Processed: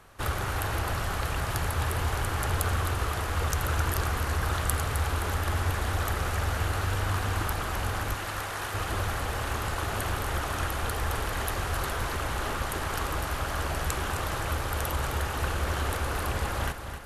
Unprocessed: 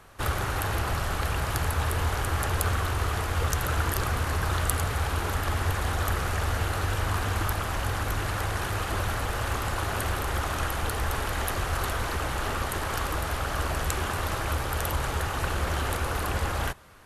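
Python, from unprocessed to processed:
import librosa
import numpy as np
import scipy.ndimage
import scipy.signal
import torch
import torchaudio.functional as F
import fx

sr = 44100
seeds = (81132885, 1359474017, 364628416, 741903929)

y = fx.highpass(x, sr, hz=490.0, slope=6, at=(8.14, 8.74))
y = fx.echo_feedback(y, sr, ms=261, feedback_pct=58, wet_db=-9.5)
y = y * librosa.db_to_amplitude(-2.0)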